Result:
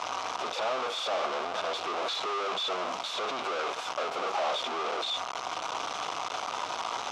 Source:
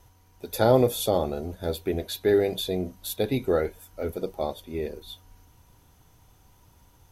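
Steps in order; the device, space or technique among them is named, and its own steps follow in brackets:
home computer beeper (sign of each sample alone; loudspeaker in its box 630–5,200 Hz, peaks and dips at 690 Hz +6 dB, 1,200 Hz +8 dB, 1,800 Hz −8 dB, 4,500 Hz −5 dB)

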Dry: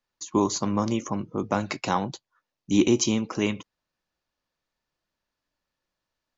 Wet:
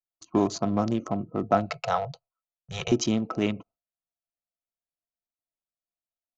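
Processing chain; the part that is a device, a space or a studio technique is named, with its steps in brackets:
adaptive Wiener filter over 25 samples
noise gate with hold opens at −50 dBFS
0:01.69–0:02.92: elliptic band-stop filter 160–460 Hz
inside a cardboard box (low-pass filter 5,100 Hz 12 dB per octave; hollow resonant body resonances 690/1,300 Hz, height 16 dB, ringing for 55 ms)
dynamic equaliser 1,100 Hz, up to −5 dB, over −35 dBFS, Q 0.8

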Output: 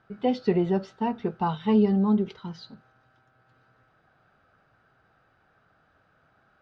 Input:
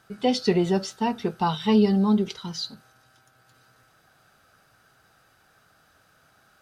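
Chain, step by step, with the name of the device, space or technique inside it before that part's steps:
phone in a pocket (low-pass filter 3,100 Hz 12 dB per octave; high-shelf EQ 2,200 Hz −8 dB)
level −1.5 dB

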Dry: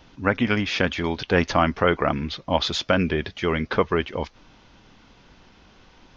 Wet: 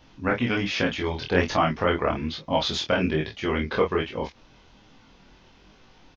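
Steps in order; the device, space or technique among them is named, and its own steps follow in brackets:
parametric band 1,400 Hz −2 dB
double-tracked vocal (double-tracking delay 26 ms −4 dB; chorus effect 1.2 Hz, delay 18 ms, depth 6.1 ms)

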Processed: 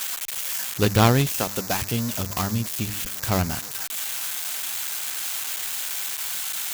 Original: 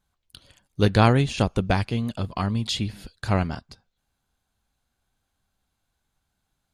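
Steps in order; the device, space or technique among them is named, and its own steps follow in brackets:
0:01.39–0:01.82: high-pass filter 420 Hz 6 dB per octave
parametric band 4,800 Hz +5.5 dB 2 octaves
hum removal 100.1 Hz, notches 3
budget class-D amplifier (gap after every zero crossing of 0.16 ms; spike at every zero crossing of −11.5 dBFS)

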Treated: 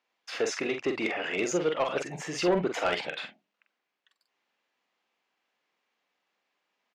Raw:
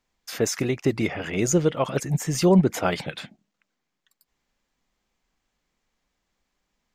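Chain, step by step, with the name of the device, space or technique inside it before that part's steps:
intercom (band-pass filter 420–4,000 Hz; parametric band 2,700 Hz +4 dB 0.27 octaves; soft clipping −19 dBFS, distortion −14 dB; double-tracking delay 45 ms −6.5 dB)

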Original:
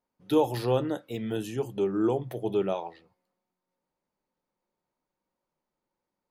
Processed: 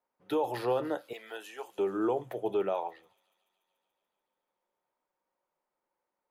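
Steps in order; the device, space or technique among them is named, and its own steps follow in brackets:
DJ mixer with the lows and highs turned down (three-way crossover with the lows and the highs turned down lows −15 dB, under 390 Hz, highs −14 dB, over 2,500 Hz; brickwall limiter −23.5 dBFS, peak gain reduction 7.5 dB)
0:01.13–0:01.79: high-pass filter 790 Hz 12 dB per octave
high-shelf EQ 5,500 Hz +5 dB
delay with a high-pass on its return 144 ms, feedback 77%, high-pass 5,400 Hz, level −11.5 dB
level +2.5 dB

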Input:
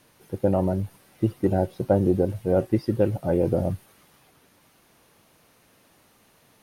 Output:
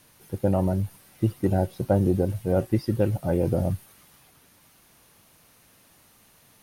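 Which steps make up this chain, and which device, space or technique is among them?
smiley-face EQ (low-shelf EQ 110 Hz +4.5 dB; parametric band 420 Hz −3.5 dB 1.5 octaves; high-shelf EQ 5,500 Hz +6.5 dB)

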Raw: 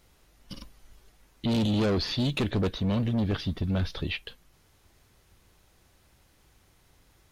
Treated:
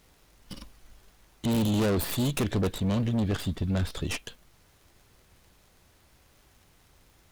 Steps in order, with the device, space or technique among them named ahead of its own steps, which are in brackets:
record under a worn stylus (stylus tracing distortion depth 0.28 ms; surface crackle; pink noise bed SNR 35 dB)

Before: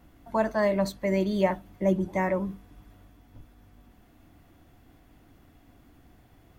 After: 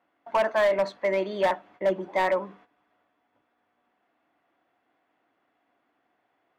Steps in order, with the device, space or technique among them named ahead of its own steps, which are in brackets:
walkie-talkie (band-pass filter 570–2,400 Hz; hard clipping −24.5 dBFS, distortion −12 dB; noise gate −59 dBFS, range −13 dB)
level +7 dB

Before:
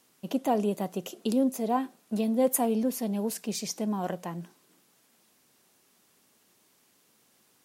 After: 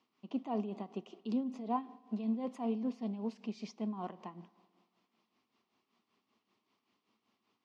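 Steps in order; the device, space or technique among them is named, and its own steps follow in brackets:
combo amplifier with spring reverb and tremolo (spring reverb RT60 1.8 s, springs 55 ms, chirp 25 ms, DRR 18.5 dB; amplitude tremolo 5.2 Hz, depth 63%; loudspeaker in its box 95–4,300 Hz, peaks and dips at 150 Hz −10 dB, 220 Hz +4 dB, 540 Hz −8 dB, 1,100 Hz +6 dB, 1,600 Hz −10 dB, 3,800 Hz −4 dB)
level −6.5 dB

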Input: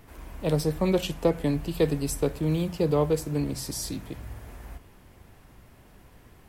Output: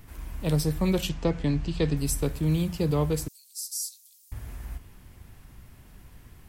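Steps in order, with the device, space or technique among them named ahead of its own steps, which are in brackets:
0:01.09–0:01.97: low-pass filter 6,600 Hz 24 dB per octave
0:03.28–0:04.32: inverse Chebyshev high-pass filter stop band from 910 Hz, stop band 80 dB
smiley-face EQ (low-shelf EQ 160 Hz +6 dB; parametric band 540 Hz −6 dB 1.7 octaves; high-shelf EQ 5,600 Hz +4.5 dB)

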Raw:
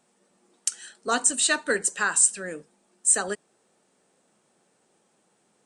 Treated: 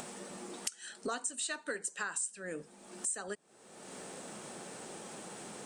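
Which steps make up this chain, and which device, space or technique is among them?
0:01.08–0:02.03: low-shelf EQ 120 Hz −10 dB
upward and downward compression (upward compression, threshold −27 dBFS; downward compressor 6 to 1, threshold −34 dBFS, peak gain reduction 18.5 dB)
level −1 dB

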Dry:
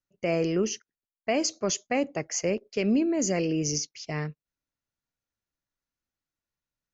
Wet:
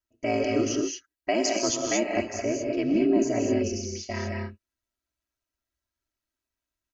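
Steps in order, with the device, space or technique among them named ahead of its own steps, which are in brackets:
0:02.25–0:03.87: high-shelf EQ 2,600 Hz −10 dB
reverb whose tail is shaped and stops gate 250 ms rising, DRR 0.5 dB
ring-modulated robot voice (ring modulation 58 Hz; comb filter 3.1 ms, depth 96%)

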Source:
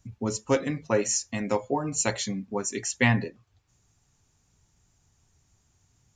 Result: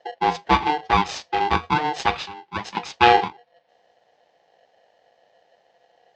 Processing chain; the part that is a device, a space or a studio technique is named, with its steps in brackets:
0:02.17–0:02.77: Chebyshev high-pass filter 570 Hz, order 2
ring modulator pedal into a guitar cabinet (ring modulator with a square carrier 600 Hz; loudspeaker in its box 81–4,100 Hz, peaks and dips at 100 Hz −4 dB, 260 Hz −5 dB, 830 Hz +9 dB, 1,300 Hz −4 dB)
level +5 dB

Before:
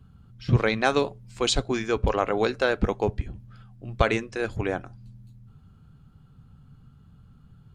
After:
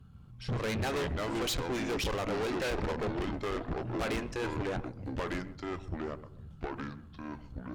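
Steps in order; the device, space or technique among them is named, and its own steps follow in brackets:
delay with pitch and tempo change per echo 135 ms, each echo −4 semitones, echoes 2, each echo −6 dB
rockabilly slapback (tube saturation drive 31 dB, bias 0.6; tape delay 132 ms, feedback 34%, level −14 dB, low-pass 1,200 Hz)
level +1 dB

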